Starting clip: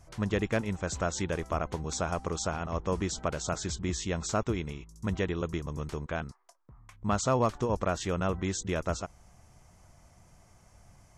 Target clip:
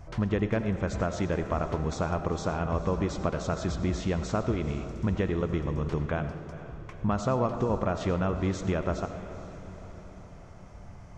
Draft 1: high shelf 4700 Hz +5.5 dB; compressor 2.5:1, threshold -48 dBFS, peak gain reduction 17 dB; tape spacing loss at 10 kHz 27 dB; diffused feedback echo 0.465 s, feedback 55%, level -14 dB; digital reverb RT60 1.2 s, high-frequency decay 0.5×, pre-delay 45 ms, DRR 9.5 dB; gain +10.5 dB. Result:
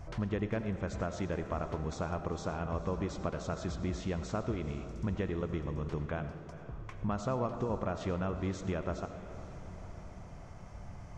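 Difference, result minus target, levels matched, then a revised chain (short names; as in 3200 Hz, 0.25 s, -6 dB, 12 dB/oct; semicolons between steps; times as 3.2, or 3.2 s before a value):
compressor: peak gain reduction +6.5 dB
high shelf 4700 Hz +5.5 dB; compressor 2.5:1, threshold -37 dBFS, peak gain reduction 10.5 dB; tape spacing loss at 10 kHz 27 dB; diffused feedback echo 0.465 s, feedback 55%, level -14 dB; digital reverb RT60 1.2 s, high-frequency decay 0.5×, pre-delay 45 ms, DRR 9.5 dB; gain +10.5 dB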